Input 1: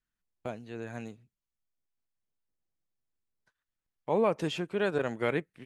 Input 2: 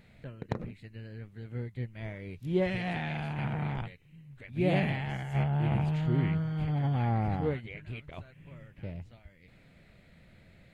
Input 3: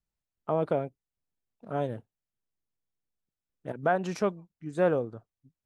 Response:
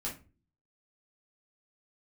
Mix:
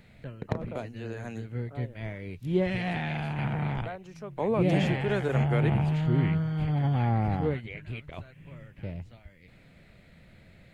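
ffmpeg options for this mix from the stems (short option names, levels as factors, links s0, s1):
-filter_complex "[0:a]adelay=300,volume=1.12[s0];[1:a]volume=1.41[s1];[2:a]volume=0.2[s2];[s0][s1][s2]amix=inputs=3:normalize=0,acrossover=split=360[s3][s4];[s4]acompressor=threshold=0.0398:ratio=4[s5];[s3][s5]amix=inputs=2:normalize=0"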